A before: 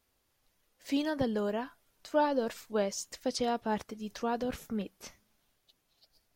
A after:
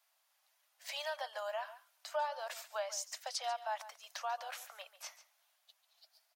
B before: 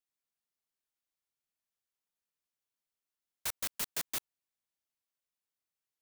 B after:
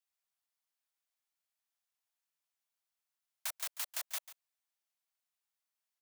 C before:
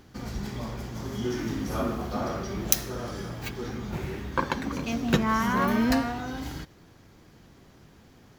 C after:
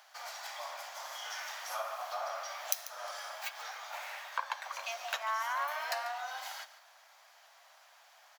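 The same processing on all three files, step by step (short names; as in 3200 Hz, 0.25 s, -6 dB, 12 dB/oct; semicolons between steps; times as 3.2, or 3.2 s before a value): steep high-pass 610 Hz 72 dB/oct; compressor 2:1, threshold -39 dBFS; echo 0.142 s -15 dB; gain +1 dB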